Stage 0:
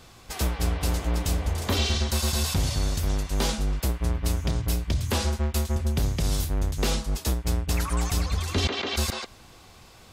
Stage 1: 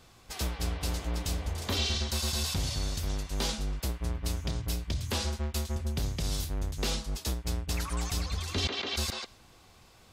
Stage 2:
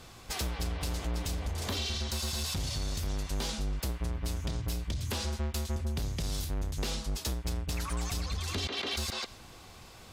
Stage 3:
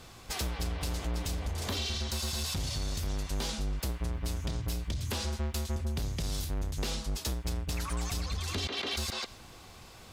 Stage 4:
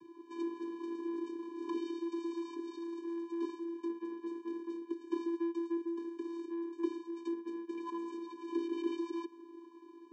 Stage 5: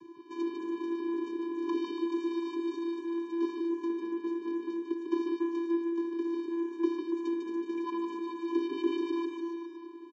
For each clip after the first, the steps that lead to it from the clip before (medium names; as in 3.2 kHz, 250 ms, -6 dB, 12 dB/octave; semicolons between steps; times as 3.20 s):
dynamic bell 4.3 kHz, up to +5 dB, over -44 dBFS, Q 0.82; trim -7 dB
compression 6:1, threshold -36 dBFS, peak gain reduction 10 dB; sine folder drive 5 dB, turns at -25 dBFS; trim -2.5 dB
crackle 410 per s -59 dBFS
median filter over 25 samples; vocoder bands 16, square 337 Hz; trim +3 dB
bouncing-ball echo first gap 150 ms, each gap 0.9×, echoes 5; resampled via 16 kHz; trim +4.5 dB